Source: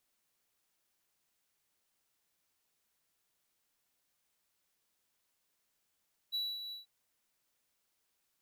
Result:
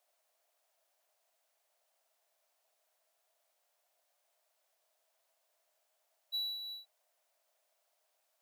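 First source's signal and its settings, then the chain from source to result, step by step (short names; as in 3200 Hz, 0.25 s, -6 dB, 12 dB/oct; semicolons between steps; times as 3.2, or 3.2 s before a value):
ADSR triangle 3930 Hz, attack 27 ms, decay 0.239 s, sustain -9 dB, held 0.40 s, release 0.137 s -30 dBFS
resonant high-pass 640 Hz, resonance Q 7.1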